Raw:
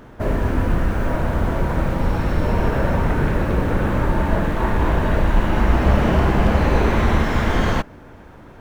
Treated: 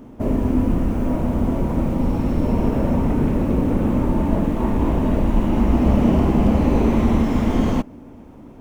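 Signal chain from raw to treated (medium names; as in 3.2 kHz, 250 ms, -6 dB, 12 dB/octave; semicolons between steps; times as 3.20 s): fifteen-band graphic EQ 250 Hz +11 dB, 1.6 kHz -12 dB, 4 kHz -6 dB; trim -2.5 dB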